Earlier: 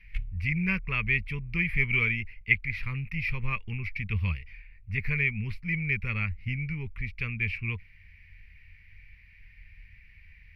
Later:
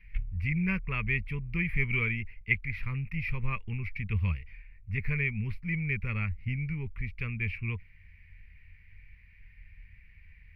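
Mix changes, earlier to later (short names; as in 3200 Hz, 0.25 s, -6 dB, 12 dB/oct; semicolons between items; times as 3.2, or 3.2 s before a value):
background: add LPF 3200 Hz 12 dB/oct; master: add bell 5500 Hz -9.5 dB 2.3 oct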